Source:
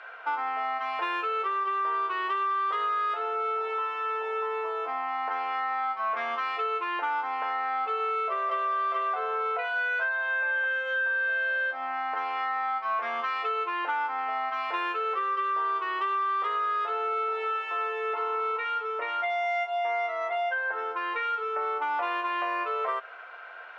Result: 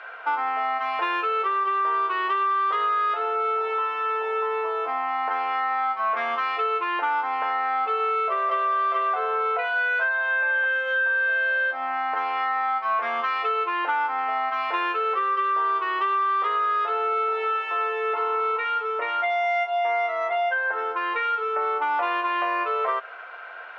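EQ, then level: air absorption 57 m; +5.0 dB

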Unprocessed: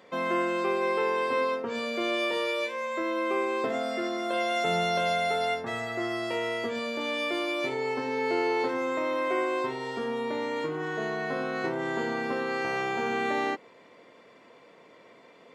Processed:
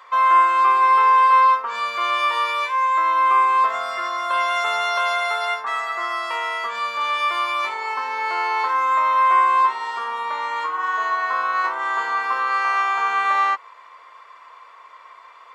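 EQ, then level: resonant high-pass 1100 Hz, resonance Q 6.2; +4.5 dB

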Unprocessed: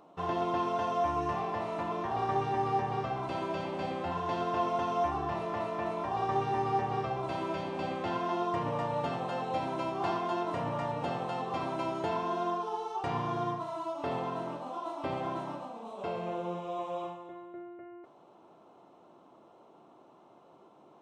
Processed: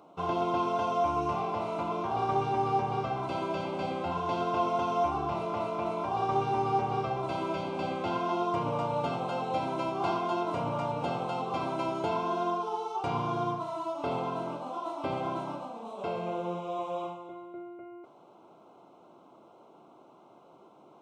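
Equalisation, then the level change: HPF 68 Hz; Butterworth band-stop 1800 Hz, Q 4.7; +2.0 dB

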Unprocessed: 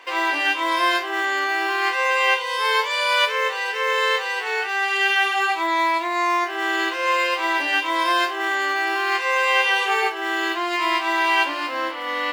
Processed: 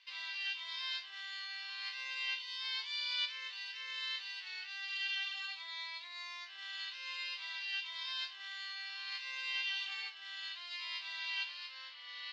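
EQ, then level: ladder band-pass 5000 Hz, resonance 50%; air absorption 150 m; high shelf 5700 Hz -8.5 dB; +5.0 dB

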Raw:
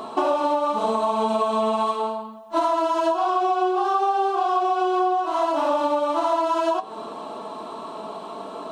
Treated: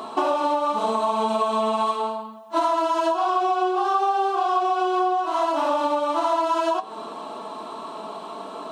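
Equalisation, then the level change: HPF 200 Hz 6 dB/oct; bell 520 Hz -3 dB 1.2 oct; +1.5 dB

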